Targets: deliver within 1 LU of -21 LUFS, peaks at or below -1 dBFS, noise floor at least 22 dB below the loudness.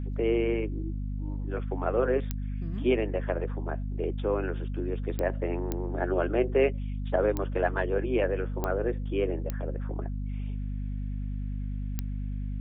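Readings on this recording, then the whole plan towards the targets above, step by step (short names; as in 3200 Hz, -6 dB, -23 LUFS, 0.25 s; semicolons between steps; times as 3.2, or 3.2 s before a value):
clicks 7; hum 50 Hz; harmonics up to 250 Hz; hum level -30 dBFS; loudness -30.5 LUFS; peak -12.5 dBFS; loudness target -21.0 LUFS
-> de-click; de-hum 50 Hz, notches 5; gain +9.5 dB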